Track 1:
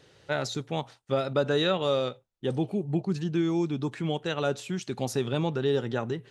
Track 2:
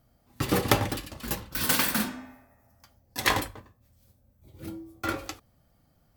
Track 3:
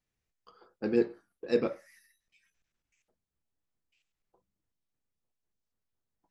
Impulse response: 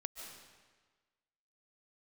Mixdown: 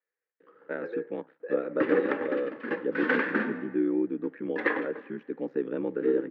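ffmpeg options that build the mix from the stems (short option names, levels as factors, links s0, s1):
-filter_complex "[0:a]lowshelf=f=310:g=10,aeval=exprs='val(0)*sin(2*PI*33*n/s)':c=same,adelay=400,volume=0.473[s0];[1:a]acrusher=bits=3:mode=log:mix=0:aa=0.000001,adelay=1400,volume=1.12,asplit=2[s1][s2];[s2]volume=0.133[s3];[2:a]highpass=f=470:w=0.5412,highpass=f=470:w=1.3066,acompressor=threshold=0.0126:ratio=6,volume=0.891[s4];[3:a]atrim=start_sample=2205[s5];[s3][s5]afir=irnorm=-1:irlink=0[s6];[s0][s1][s4][s6]amix=inputs=4:normalize=0,highpass=f=240:w=0.5412,highpass=f=240:w=1.3066,equalizer=f=300:t=q:w=4:g=7,equalizer=f=480:t=q:w=4:g=10,equalizer=f=700:t=q:w=4:g=-8,equalizer=f=1000:t=q:w=4:g=-4,equalizer=f=1700:t=q:w=4:g=8,lowpass=f=2100:w=0.5412,lowpass=f=2100:w=1.3066,alimiter=limit=0.237:level=0:latency=1:release=355"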